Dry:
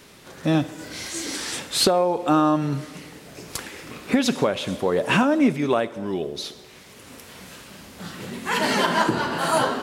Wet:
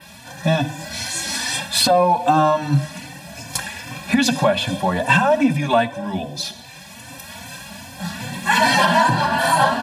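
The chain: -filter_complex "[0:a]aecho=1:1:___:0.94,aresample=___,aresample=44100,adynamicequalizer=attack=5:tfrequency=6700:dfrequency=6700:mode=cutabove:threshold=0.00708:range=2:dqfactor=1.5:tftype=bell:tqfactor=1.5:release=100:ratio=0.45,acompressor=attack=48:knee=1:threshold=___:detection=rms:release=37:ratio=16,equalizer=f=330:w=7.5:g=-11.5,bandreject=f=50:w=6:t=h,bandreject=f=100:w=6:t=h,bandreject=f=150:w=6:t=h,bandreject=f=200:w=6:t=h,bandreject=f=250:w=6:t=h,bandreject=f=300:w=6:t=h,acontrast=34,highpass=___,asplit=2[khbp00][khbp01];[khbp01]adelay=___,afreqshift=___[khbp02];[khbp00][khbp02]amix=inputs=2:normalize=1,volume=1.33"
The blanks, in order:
1.2, 32000, 0.112, 64, 3.3, 2.5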